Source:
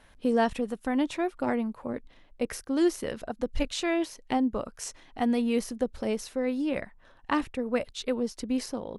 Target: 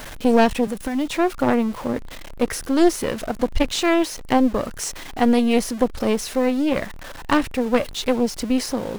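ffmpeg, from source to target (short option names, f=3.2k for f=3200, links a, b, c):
-filter_complex "[0:a]aeval=exprs='val(0)+0.5*0.0126*sgn(val(0))':c=same,asettb=1/sr,asplit=3[a][b][c];[a]atrim=end=0.674[d];[b]atrim=start=0.67:end=1.11,asetpts=PTS-STARTPTS,afade=t=in:d=0.004:c=qsin,afade=t=out:st=0.436:d=0.004:c=qsin,acrossover=split=180|3000[e][f][g];[f]acompressor=threshold=-29dB:ratio=6[h];[e][h][g]amix=inputs=3:normalize=0[i];[c]atrim=start=1.106[j];[d][i]acrossfade=d=0.004:c1=hsin:c2=qsin[k];[k][j]acrossfade=d=0.004:c1=qsin:c2=hsin,aeval=exprs='0.224*(cos(1*acos(clip(val(0)/0.224,-1,1)))-cos(1*PI/2))+0.0501*(cos(4*acos(clip(val(0)/0.224,-1,1)))-cos(4*PI/2))+0.01*(cos(6*acos(clip(val(0)/0.224,-1,1)))-cos(6*PI/2))':c=same,volume=7dB"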